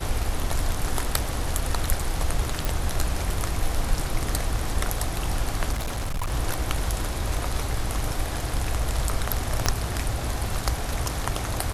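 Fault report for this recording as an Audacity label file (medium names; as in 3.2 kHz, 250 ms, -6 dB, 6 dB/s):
2.650000	2.650000	pop
5.720000	6.330000	clipped -24 dBFS
9.660000	9.660000	pop -5 dBFS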